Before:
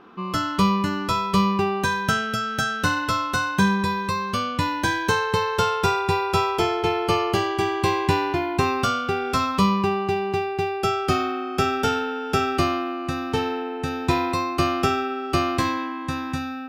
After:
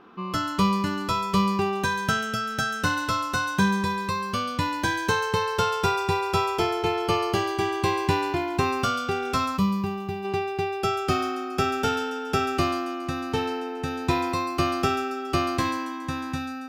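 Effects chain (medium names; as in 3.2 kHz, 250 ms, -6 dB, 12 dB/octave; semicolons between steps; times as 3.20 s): feedback echo behind a high-pass 139 ms, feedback 51%, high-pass 4.9 kHz, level -6 dB; time-frequency box 9.57–10.25 s, 240–11000 Hz -7 dB; trim -2.5 dB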